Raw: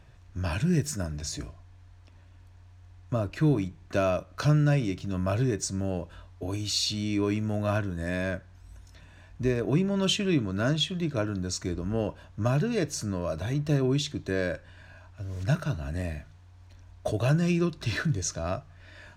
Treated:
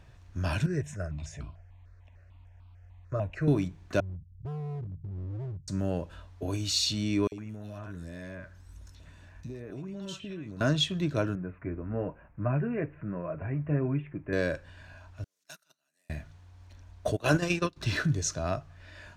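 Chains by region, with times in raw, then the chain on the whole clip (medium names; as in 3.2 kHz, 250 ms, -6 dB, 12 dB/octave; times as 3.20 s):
0.66–3.48 s: distance through air 94 m + stepped phaser 6.7 Hz 840–1800 Hz
4.00–5.68 s: inverse Chebyshev low-pass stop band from 630 Hz, stop band 70 dB + hard clipper -34.5 dBFS
7.27–10.61 s: compression 8:1, threshold -36 dBFS + three bands offset in time highs, lows, mids 50/110 ms, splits 740/2600 Hz
11.35–14.33 s: steep low-pass 2.5 kHz 72 dB/octave + flange 1.1 Hz, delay 5.2 ms, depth 3.3 ms, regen -43%
15.24–16.10 s: gate -25 dBFS, range -22 dB + high-pass 160 Hz 24 dB/octave + differentiator
17.15–17.76 s: spectral peaks clipped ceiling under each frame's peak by 15 dB + gate -25 dBFS, range -21 dB
whole clip: none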